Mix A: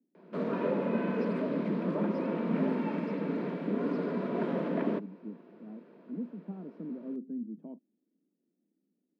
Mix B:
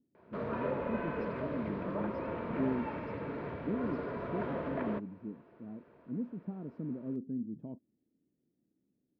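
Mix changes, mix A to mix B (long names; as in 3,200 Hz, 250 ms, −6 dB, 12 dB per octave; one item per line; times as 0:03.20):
background: add resonant band-pass 1,200 Hz, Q 0.62
master: remove Butterworth high-pass 170 Hz 72 dB per octave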